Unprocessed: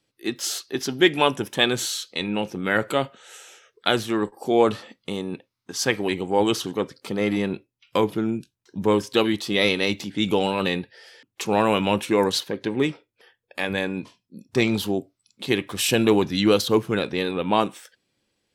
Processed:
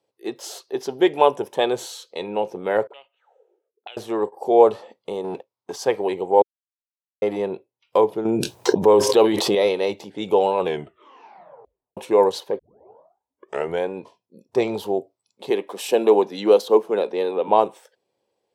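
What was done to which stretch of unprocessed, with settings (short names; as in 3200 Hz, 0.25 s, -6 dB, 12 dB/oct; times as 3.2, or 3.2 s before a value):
2.87–3.97 auto-wah 230–2700 Hz, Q 8.2, up, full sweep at -26 dBFS
5.24–5.76 sample leveller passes 2
6.42–7.22 mute
8.25–9.55 fast leveller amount 100%
10.56 tape stop 1.41 s
12.59 tape start 1.30 s
15.5–17.48 steep high-pass 190 Hz
whole clip: HPF 90 Hz; band shelf 620 Hz +14.5 dB; gain -8.5 dB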